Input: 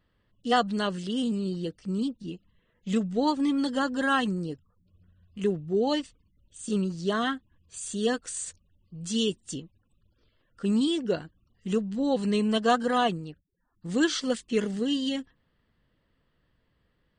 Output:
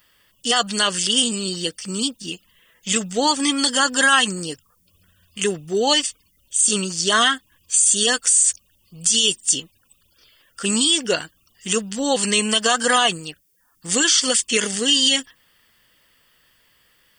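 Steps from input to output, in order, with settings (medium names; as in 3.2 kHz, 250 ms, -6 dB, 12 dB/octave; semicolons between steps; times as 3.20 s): pre-emphasis filter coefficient 0.97; band-stop 4 kHz, Q 6.1; loudness maximiser +34 dB; trim -5.5 dB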